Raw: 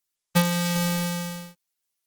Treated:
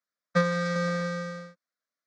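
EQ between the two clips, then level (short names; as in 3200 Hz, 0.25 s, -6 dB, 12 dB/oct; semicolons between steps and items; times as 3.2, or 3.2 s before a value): Gaussian blur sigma 2.1 samples; HPF 350 Hz 6 dB/oct; fixed phaser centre 570 Hz, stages 8; +5.0 dB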